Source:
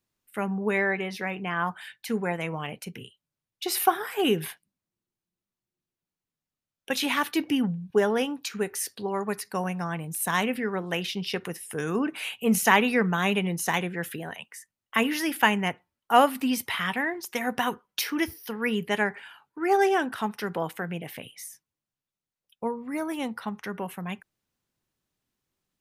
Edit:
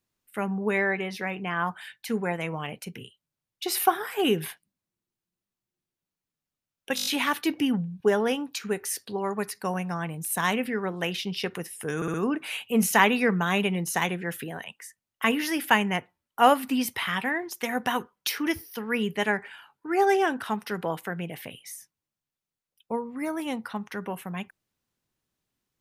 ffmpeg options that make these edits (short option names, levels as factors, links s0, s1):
-filter_complex "[0:a]asplit=9[s0][s1][s2][s3][s4][s5][s6][s7][s8];[s0]atrim=end=6.982[s9];[s1]atrim=start=6.958:end=6.982[s10];[s2]atrim=start=6.958:end=6.982[s11];[s3]atrim=start=6.958:end=6.982[s12];[s4]atrim=start=6.958:end=6.982[s13];[s5]atrim=start=6.958:end=11.922[s14];[s6]atrim=start=11.858:end=11.922[s15];[s7]atrim=start=11.858:end=11.922[s16];[s8]atrim=start=11.858[s17];[s9][s10]acrossfade=d=0.004:c1=hsin:c2=hsin[s18];[s18][s11]acrossfade=d=0.004:c1=hsin:c2=hsin[s19];[s19][s12]acrossfade=d=0.004:c1=hsin:c2=hsin[s20];[s20][s13]acrossfade=d=0.004:c1=hsin:c2=hsin[s21];[s21][s14]acrossfade=d=0.004:c1=hsin:c2=hsin[s22];[s22][s15]acrossfade=d=0.004:c1=hsin:c2=hsin[s23];[s23][s16]acrossfade=d=0.004:c1=hsin:c2=hsin[s24];[s24][s17]acrossfade=d=0.004:c1=hsin:c2=hsin"